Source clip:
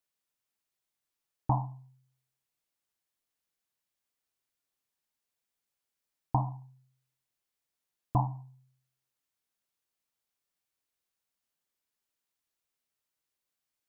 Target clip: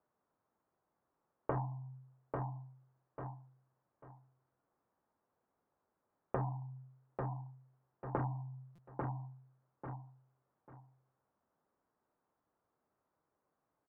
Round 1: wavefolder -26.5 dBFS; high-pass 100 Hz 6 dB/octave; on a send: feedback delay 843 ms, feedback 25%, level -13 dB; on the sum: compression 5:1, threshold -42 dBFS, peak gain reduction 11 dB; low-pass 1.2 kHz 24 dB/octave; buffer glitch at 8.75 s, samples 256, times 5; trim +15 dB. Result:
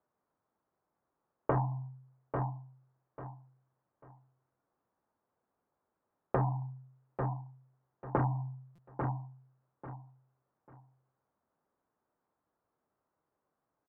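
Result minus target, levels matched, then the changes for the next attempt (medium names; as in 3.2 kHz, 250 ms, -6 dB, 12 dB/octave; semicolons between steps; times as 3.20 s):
compression: peak gain reduction -7 dB
change: compression 5:1, threshold -50.5 dBFS, peak gain reduction 17.5 dB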